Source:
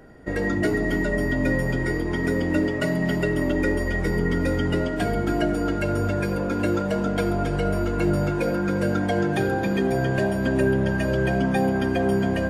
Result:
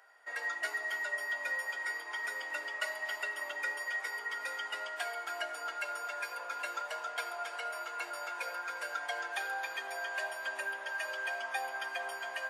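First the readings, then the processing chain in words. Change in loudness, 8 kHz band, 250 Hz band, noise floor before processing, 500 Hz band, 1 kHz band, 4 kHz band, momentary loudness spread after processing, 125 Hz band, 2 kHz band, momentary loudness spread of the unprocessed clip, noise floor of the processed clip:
−13.5 dB, −5.0 dB, below −40 dB, −26 dBFS, −21.5 dB, −8.0 dB, −5.0 dB, 4 LU, below −40 dB, −5.0 dB, 3 LU, −45 dBFS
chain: high-pass filter 850 Hz 24 dB per octave
level −5 dB

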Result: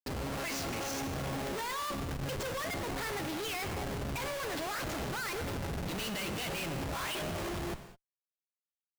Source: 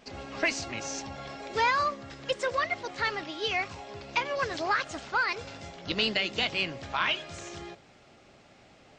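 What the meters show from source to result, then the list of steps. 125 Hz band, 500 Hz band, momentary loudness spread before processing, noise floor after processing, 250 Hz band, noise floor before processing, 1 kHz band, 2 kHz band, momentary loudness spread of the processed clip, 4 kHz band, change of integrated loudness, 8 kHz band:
+6.0 dB, −4.0 dB, 14 LU, below −85 dBFS, +1.5 dB, −57 dBFS, −7.5 dB, −9.0 dB, 2 LU, −7.5 dB, −6.0 dB, +1.0 dB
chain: comparator with hysteresis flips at −41 dBFS
reverb whose tail is shaped and stops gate 230 ms flat, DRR 9 dB
level −4.5 dB

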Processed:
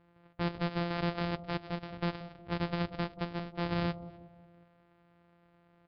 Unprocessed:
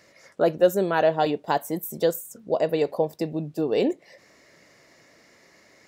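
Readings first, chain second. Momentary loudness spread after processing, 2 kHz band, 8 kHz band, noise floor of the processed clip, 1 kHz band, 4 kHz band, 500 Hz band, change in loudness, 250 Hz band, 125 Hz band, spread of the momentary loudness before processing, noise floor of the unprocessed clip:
11 LU, −6.5 dB, below −30 dB, −66 dBFS, −11.0 dB, −4.5 dB, −17.5 dB, −11.5 dB, −7.0 dB, 0.0 dB, 10 LU, −57 dBFS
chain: samples sorted by size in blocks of 256 samples
low-pass that shuts in the quiet parts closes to 2,100 Hz, open at −20 dBFS
downsampling to 11,025 Hz
brickwall limiter −14 dBFS, peak gain reduction 8 dB
bucket-brigade delay 181 ms, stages 1,024, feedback 47%, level −13 dB
level −8.5 dB

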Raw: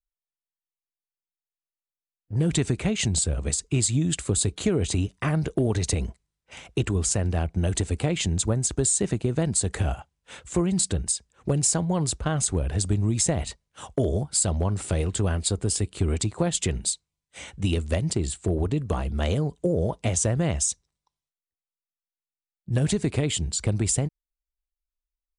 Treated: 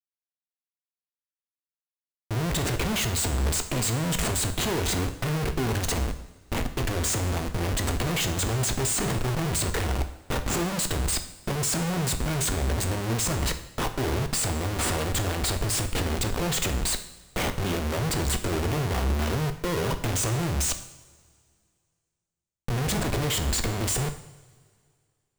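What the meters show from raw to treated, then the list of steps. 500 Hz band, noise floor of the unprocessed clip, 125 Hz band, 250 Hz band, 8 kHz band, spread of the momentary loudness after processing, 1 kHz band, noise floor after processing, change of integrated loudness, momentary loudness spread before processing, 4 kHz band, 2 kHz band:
−2.0 dB, below −85 dBFS, −2.5 dB, −3.0 dB, −2.5 dB, 5 LU, +5.5 dB, below −85 dBFS, −1.5 dB, 6 LU, +3.0 dB, +5.5 dB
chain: comparator with hysteresis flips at −38 dBFS
coupled-rooms reverb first 0.73 s, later 2.3 s, from −17 dB, DRR 7 dB

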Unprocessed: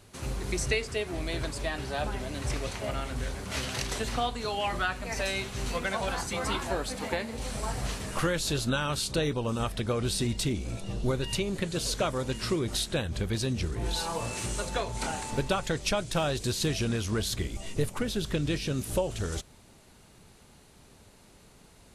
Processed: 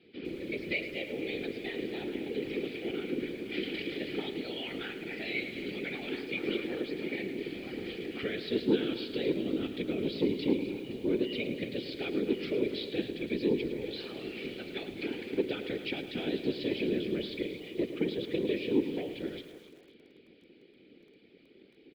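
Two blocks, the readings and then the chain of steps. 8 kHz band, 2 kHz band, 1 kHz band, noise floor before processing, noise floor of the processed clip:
below −25 dB, −4.0 dB, −16.5 dB, −56 dBFS, −59 dBFS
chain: parametric band 790 Hz +6 dB 0.71 octaves
in parallel at −4.5 dB: wave folding −21.5 dBFS
on the sum: formant filter i
soft clipping −24 dBFS, distortion −25 dB
notch comb filter 510 Hz
frequency shifter +79 Hz
random phases in short frames
high-frequency loss of the air 59 metres
on a send: echo with a time of its own for lows and highs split 430 Hz, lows 155 ms, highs 260 ms, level −14 dB
on the sum: downsampling to 11,025 Hz
feedback echo at a low word length 107 ms, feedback 55%, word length 10 bits, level −11 dB
level +6.5 dB

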